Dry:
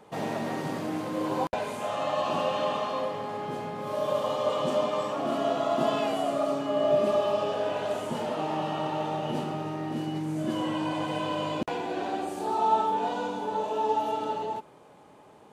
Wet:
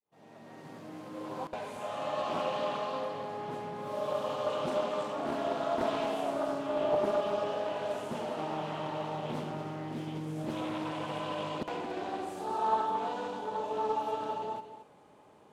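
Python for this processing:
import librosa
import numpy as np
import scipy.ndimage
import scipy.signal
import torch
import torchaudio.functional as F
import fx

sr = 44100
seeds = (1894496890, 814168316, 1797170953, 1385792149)

y = fx.fade_in_head(x, sr, length_s=2.23)
y = y + 10.0 ** (-11.0 / 20.0) * np.pad(y, (int(226 * sr / 1000.0), 0))[:len(y)]
y = fx.doppler_dist(y, sr, depth_ms=0.5)
y = F.gain(torch.from_numpy(y), -5.5).numpy()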